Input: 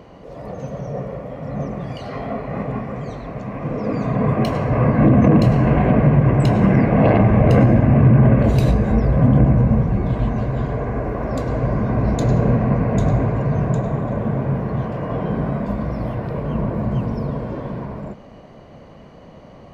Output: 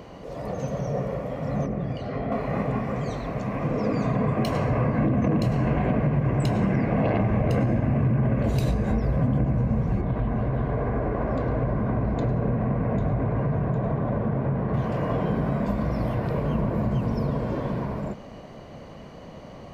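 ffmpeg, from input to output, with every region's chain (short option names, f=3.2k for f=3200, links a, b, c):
-filter_complex "[0:a]asettb=1/sr,asplit=3[a][b][c];[a]atrim=end=1.664[d];[b]atrim=start=1.66:end=2.32,asetpts=PTS-STARTPTS,afade=t=in:d=0.004:c=qsin,afade=t=out:st=0.656:d=0.004:c=qsin,lowpass=f=1.2k:p=1,equalizer=f=950:t=o:w=0.7:g=-5.5[e];[c]atrim=start=2.316[f];[d][e]acrossfade=d=0.004:c1=hsin:c2=qsin[g];[g][f]acrossfade=d=0.004:c1=qsin:c2=hsin,asettb=1/sr,asplit=3[h][i][j];[h]atrim=end=10.014[k];[i]atrim=start=10.01:end=14.74,asetpts=PTS-STARTPTS,afade=t=in:d=0.004:c=qsin,afade=t=out:st=4.726:d=0.004:c=qsin,acompressor=threshold=-19dB:ratio=2:attack=3.2:release=140:knee=1:detection=peak,aeval=exprs='sgn(val(0))*max(abs(val(0))-0.00398,0)':c=same,lowpass=2.1k[l];[j]atrim=start=14.736[m];[k][l]acrossfade=d=0.004:c1=hsin:c2=qsin[n];[n][m]acrossfade=d=0.004:c1=qsin:c2=hsin,acompressor=threshold=-21dB:ratio=4,highshelf=f=3.9k:g=6.5"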